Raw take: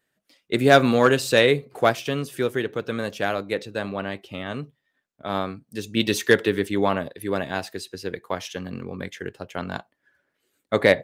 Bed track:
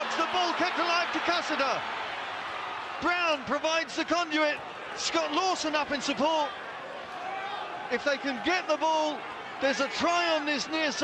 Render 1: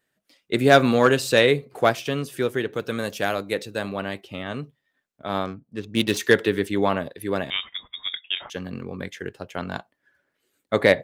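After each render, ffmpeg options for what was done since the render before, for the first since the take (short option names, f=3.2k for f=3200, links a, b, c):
-filter_complex "[0:a]asettb=1/sr,asplit=3[a][b][c];[a]atrim=end=2.744[d];[b]atrim=start=2.74:end=4.21,asetpts=PTS-STARTPTS,afade=t=in:d=0.004:c=qsin,afade=t=out:st=1.466:d=0.004:c=qsin,highshelf=f=7.2k:g=11[e];[c]atrim=start=4.206[f];[d][e]acrossfade=d=0.004:c1=hsin:c2=qsin[g];[g][f]acrossfade=d=0.004:c1=qsin:c2=hsin,asettb=1/sr,asplit=3[h][i][j];[h]atrim=end=5.454[k];[i]atrim=start=5.45:end=6.17,asetpts=PTS-STARTPTS,afade=t=in:d=0.004:c=qsin,afade=t=out:st=0.716:d=0.004:c=qsin,adynamicsmooth=sensitivity=5:basefreq=1.2k[l];[j]atrim=start=6.166[m];[k][l]acrossfade=d=0.004:c1=hsin:c2=qsin[n];[n][m]acrossfade=d=0.004:c1=qsin:c2=hsin,asettb=1/sr,asplit=3[o][p][q];[o]atrim=end=7.504[r];[p]atrim=start=7.5:end=8.5,asetpts=PTS-STARTPTS,afade=t=in:d=0.004:c=qsin,afade=t=out:st=0.996:d=0.004:c=qsin,lowpass=f=3.2k:t=q:w=0.5098,lowpass=f=3.2k:t=q:w=0.6013,lowpass=f=3.2k:t=q:w=0.9,lowpass=f=3.2k:t=q:w=2.563,afreqshift=-3800[s];[q]atrim=start=8.496[t];[r][s]acrossfade=d=0.004:c1=hsin:c2=qsin[u];[u][t]acrossfade=d=0.004:c1=qsin:c2=hsin"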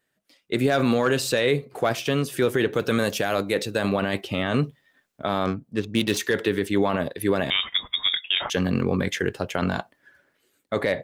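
-af "dynaudnorm=f=200:g=5:m=14dB,alimiter=limit=-11.5dB:level=0:latency=1:release=23"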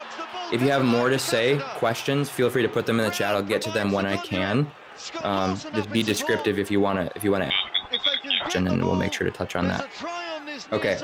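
-filter_complex "[1:a]volume=-6dB[a];[0:a][a]amix=inputs=2:normalize=0"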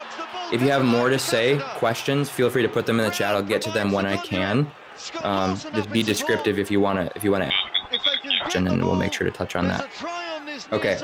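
-af "volume=1.5dB"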